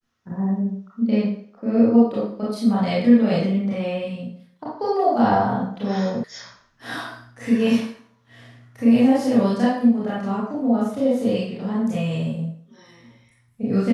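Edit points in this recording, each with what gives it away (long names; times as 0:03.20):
0:06.24: cut off before it has died away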